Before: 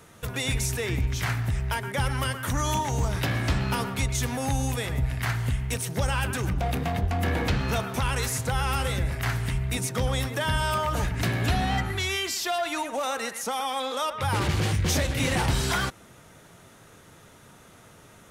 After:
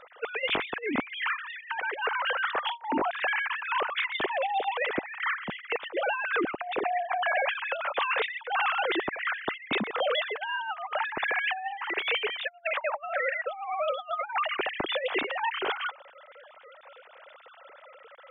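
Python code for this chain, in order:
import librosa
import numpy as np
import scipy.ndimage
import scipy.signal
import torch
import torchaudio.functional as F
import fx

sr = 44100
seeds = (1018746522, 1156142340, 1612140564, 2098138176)

y = fx.sine_speech(x, sr)
y = fx.over_compress(y, sr, threshold_db=-29.0, ratio=-0.5)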